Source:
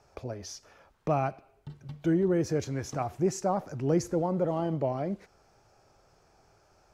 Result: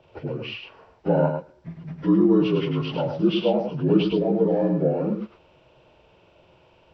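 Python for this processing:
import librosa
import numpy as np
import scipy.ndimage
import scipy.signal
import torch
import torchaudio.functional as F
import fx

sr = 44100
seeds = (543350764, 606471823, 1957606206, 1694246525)

y = fx.partial_stretch(x, sr, pct=77)
y = y + 10.0 ** (-6.0 / 20.0) * np.pad(y, (int(104 * sr / 1000.0), 0))[:len(y)]
y = y * 10.0 ** (8.0 / 20.0)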